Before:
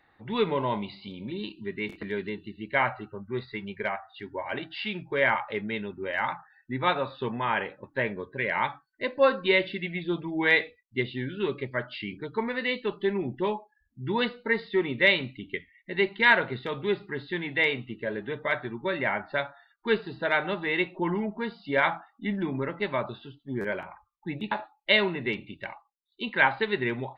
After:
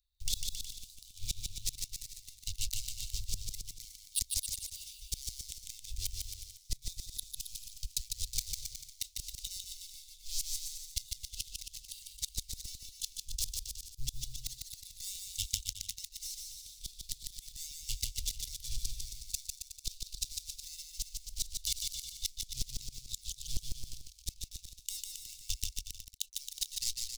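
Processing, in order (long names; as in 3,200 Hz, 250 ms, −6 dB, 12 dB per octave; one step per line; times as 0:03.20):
fade-out on the ending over 2.04 s
leveller curve on the samples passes 5
inverse Chebyshev band-stop filter 160–1,700 Hz, stop band 60 dB
gate with flip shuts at −27 dBFS, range −29 dB
on a send: bouncing-ball delay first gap 150 ms, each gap 0.8×, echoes 5
on the sum: level +11 dB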